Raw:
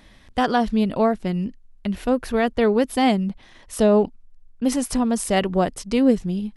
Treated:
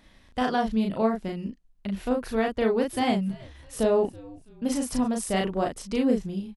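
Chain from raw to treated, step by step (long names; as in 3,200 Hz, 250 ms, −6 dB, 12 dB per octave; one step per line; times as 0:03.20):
double-tracking delay 36 ms −3 dB
0:02.60–0:05.08: echo with shifted repeats 327 ms, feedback 42%, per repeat −120 Hz, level −21.5 dB
level −7 dB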